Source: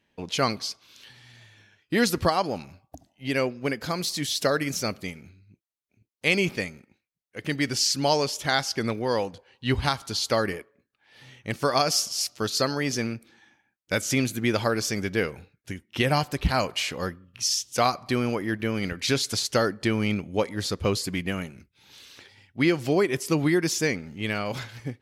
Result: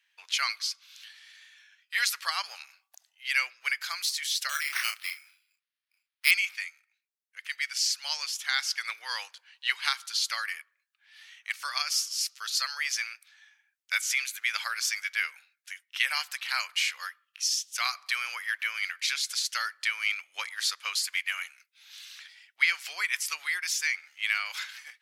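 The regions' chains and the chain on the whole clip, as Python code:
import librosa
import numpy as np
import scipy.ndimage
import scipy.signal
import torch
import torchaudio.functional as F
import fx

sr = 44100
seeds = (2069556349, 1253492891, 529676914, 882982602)

y = fx.chain(x, sr, fx.low_shelf(hz=460.0, db=-5.0),
    fx.resample_bad(factor=6, down='none', up='hold'),
    fx.doubler(ms=34.0, db=-5.0), at=(4.49, 6.31))
y = scipy.signal.sosfilt(scipy.signal.butter(4, 1400.0, 'highpass', fs=sr, output='sos'), y)
y = fx.dynamic_eq(y, sr, hz=2200.0, q=7.0, threshold_db=-44.0, ratio=4.0, max_db=5)
y = fx.rider(y, sr, range_db=4, speed_s=0.5)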